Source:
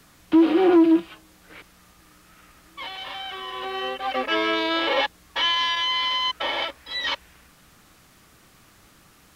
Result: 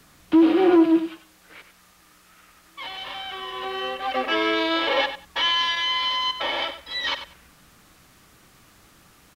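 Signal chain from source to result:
0:00.98–0:02.85: low-shelf EQ 400 Hz −8 dB
on a send: repeating echo 95 ms, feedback 17%, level −11 dB

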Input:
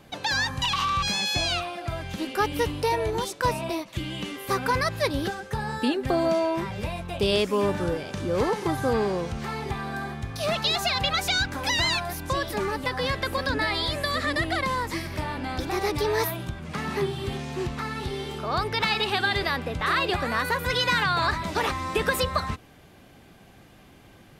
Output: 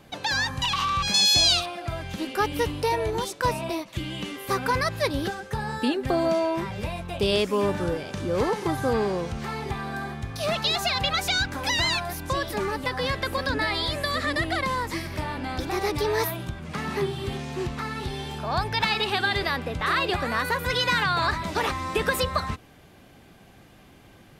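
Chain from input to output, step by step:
0:01.14–0:01.66: high shelf with overshoot 3,000 Hz +8.5 dB, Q 1.5
0:18.08–0:18.85: comb filter 1.2 ms, depth 45%

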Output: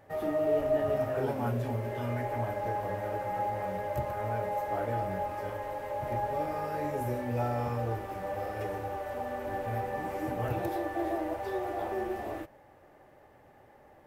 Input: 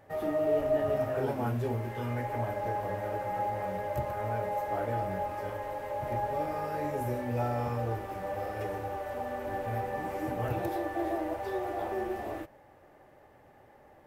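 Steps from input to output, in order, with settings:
healed spectral selection 0:01.37–0:02.33, 320–660 Hz

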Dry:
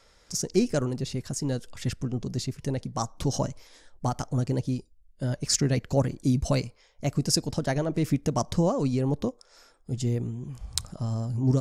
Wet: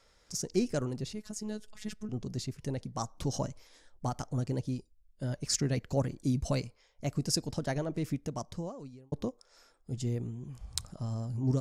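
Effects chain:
0:01.13–0:02.09: phases set to zero 213 Hz
0:07.76–0:09.12: fade out
level −6 dB

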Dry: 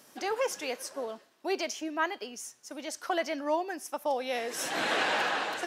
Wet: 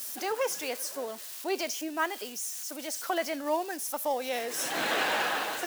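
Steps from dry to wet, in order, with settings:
spike at every zero crossing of −33 dBFS

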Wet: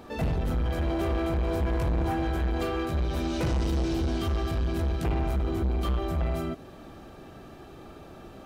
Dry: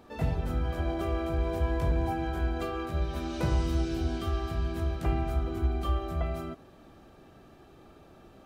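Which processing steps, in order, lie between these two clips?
dynamic equaliser 1,100 Hz, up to −4 dB, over −52 dBFS, Q 1.1
soft clipping −31 dBFS, distortion −9 dB
level +8 dB

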